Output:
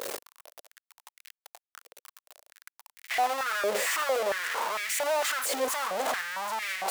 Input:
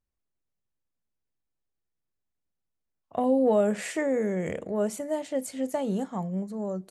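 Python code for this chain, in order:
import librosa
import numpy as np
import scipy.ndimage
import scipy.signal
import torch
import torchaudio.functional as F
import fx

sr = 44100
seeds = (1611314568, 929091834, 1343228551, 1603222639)

y = np.sign(x) * np.sqrt(np.mean(np.square(x)))
y = fx.filter_held_highpass(y, sr, hz=4.4, low_hz=500.0, high_hz=2000.0)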